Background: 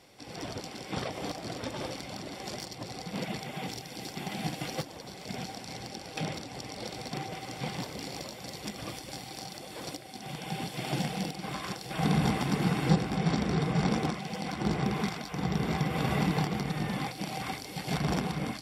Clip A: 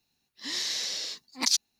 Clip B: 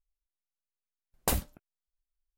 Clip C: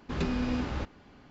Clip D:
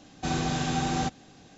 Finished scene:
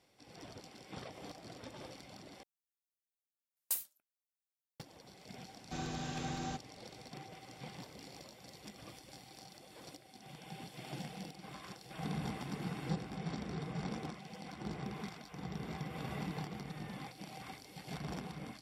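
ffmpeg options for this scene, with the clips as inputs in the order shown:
ffmpeg -i bed.wav -i cue0.wav -i cue1.wav -i cue2.wav -i cue3.wav -filter_complex "[0:a]volume=-13dB[link_01];[2:a]aderivative[link_02];[link_01]asplit=2[link_03][link_04];[link_03]atrim=end=2.434[link_05];[link_02]atrim=end=2.37,asetpts=PTS-STARTPTS,volume=-6dB[link_06];[link_04]atrim=start=4.796[link_07];[4:a]atrim=end=1.57,asetpts=PTS-STARTPTS,volume=-12.5dB,afade=type=in:duration=0.004:curve=hsin,afade=type=out:start_time=1.566:duration=0.004:curve=hsin,adelay=5480[link_08];[link_05][link_06]acrossfade=duration=0.004:curve1=hsin:curve2=hsin[link_09];[link_09][link_07]acrossfade=duration=0.004:curve1=hsin:curve2=hsin[link_10];[link_10][link_08]amix=inputs=2:normalize=0" out.wav

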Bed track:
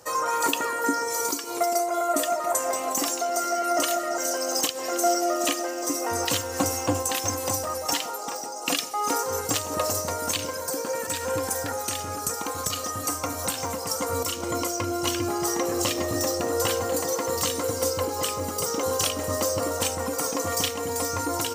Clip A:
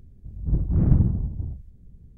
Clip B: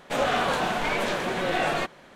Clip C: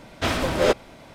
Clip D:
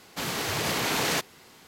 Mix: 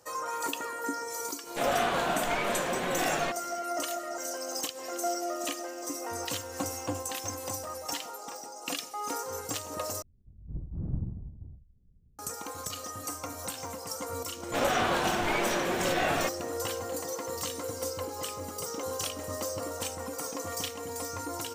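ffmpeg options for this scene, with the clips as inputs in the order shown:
ffmpeg -i bed.wav -i cue0.wav -i cue1.wav -filter_complex "[2:a]asplit=2[link_01][link_02];[0:a]volume=-9dB[link_03];[1:a]lowpass=1100[link_04];[link_03]asplit=2[link_05][link_06];[link_05]atrim=end=10.024[link_07];[link_04]atrim=end=2.17,asetpts=PTS-STARTPTS,volume=-15dB[link_08];[link_06]atrim=start=12.186[link_09];[link_01]atrim=end=2.15,asetpts=PTS-STARTPTS,volume=-4.5dB,afade=type=in:duration=0.004:curve=hsin,afade=type=out:start_time=2.146:duration=0.004:curve=hsin,adelay=1460[link_10];[link_02]atrim=end=2.15,asetpts=PTS-STARTPTS,volume=-3dB,afade=type=in:duration=0.004:curve=hsin,afade=type=out:start_time=2.146:duration=0.004:curve=hsin,adelay=14430[link_11];[link_07][link_08]acrossfade=duration=0.004:curve1=hsin:curve2=hsin[link_12];[link_12][link_09]acrossfade=duration=0.004:curve1=hsin:curve2=hsin[link_13];[link_13][link_10][link_11]amix=inputs=3:normalize=0" out.wav

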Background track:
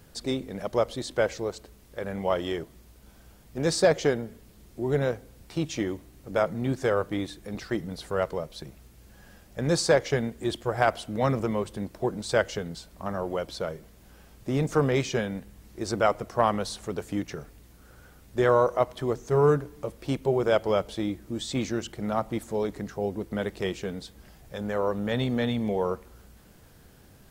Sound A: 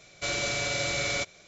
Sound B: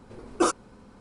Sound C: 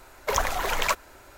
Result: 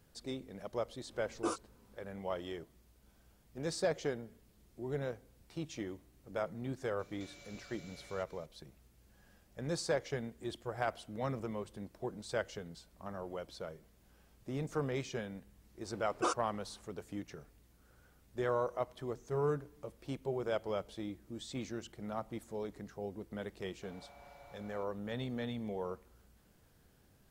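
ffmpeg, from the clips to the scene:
ffmpeg -i bed.wav -i cue0.wav -i cue1.wav -filter_complex "[2:a]asplit=2[link_01][link_02];[1:a]asplit=2[link_03][link_04];[0:a]volume=-12.5dB[link_05];[link_01]flanger=delay=17:depth=2.4:speed=2.7[link_06];[link_03]acompressor=threshold=-42dB:ratio=6:attack=3.2:release=140:knee=1:detection=peak[link_07];[link_02]highpass=440,lowpass=6900[link_08];[link_04]bandpass=frequency=840:width_type=q:width=6.3:csg=0[link_09];[link_06]atrim=end=1,asetpts=PTS-STARTPTS,volume=-11dB,afade=type=in:duration=0.004:curve=hsin,afade=type=out:start_time=0.996:duration=0.004:curve=hsin,adelay=1030[link_10];[link_07]atrim=end=1.47,asetpts=PTS-STARTPTS,volume=-12.5dB,afade=type=in:duration=0.004:curve=hsin,afade=type=out:start_time=1.466:duration=0.004:curve=hsin,adelay=6990[link_11];[link_08]atrim=end=1,asetpts=PTS-STARTPTS,volume=-7.5dB,afade=type=in:duration=0.004:curve=hsin,afade=type=out:start_time=0.996:duration=0.004:curve=hsin,adelay=15820[link_12];[link_09]atrim=end=1.47,asetpts=PTS-STARTPTS,volume=-10dB,afade=type=in:duration=0.004:curve=hsin,afade=type=out:start_time=1.466:duration=0.004:curve=hsin,adelay=23600[link_13];[link_05][link_10][link_11][link_12][link_13]amix=inputs=5:normalize=0" out.wav

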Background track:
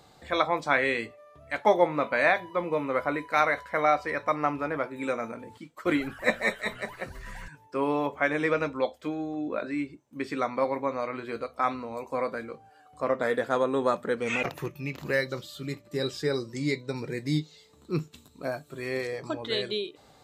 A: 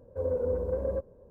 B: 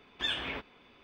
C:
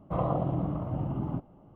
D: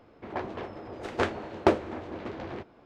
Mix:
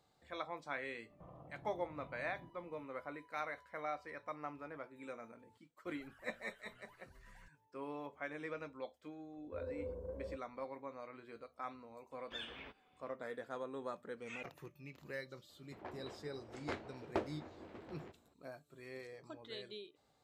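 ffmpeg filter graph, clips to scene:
ffmpeg -i bed.wav -i cue0.wav -i cue1.wav -i cue2.wav -i cue3.wav -filter_complex "[0:a]volume=-18.5dB[link_01];[3:a]acompressor=threshold=-41dB:ratio=6:attack=3.2:release=140:knee=1:detection=peak,atrim=end=1.75,asetpts=PTS-STARTPTS,volume=-13dB,afade=type=in:duration=0.004:curve=hsin,afade=type=out:start_time=1.746:duration=0.004:curve=hsin,adelay=1100[link_02];[1:a]atrim=end=1.3,asetpts=PTS-STARTPTS,volume=-15dB,afade=type=in:duration=0.004:curve=hsin,afade=type=out:start_time=1.296:duration=0.004:curve=hsin,adelay=9360[link_03];[2:a]atrim=end=1.03,asetpts=PTS-STARTPTS,volume=-14.5dB,afade=type=in:duration=0.004:curve=hsin,afade=type=out:start_time=1.026:duration=0.004:curve=hsin,adelay=12110[link_04];[4:a]atrim=end=2.85,asetpts=PTS-STARTPTS,volume=-15.5dB,afade=type=in:duration=0.004:curve=hsin,afade=type=out:start_time=2.846:duration=0.004:curve=hsin,adelay=15490[link_05];[link_01][link_02][link_03][link_04][link_05]amix=inputs=5:normalize=0" out.wav

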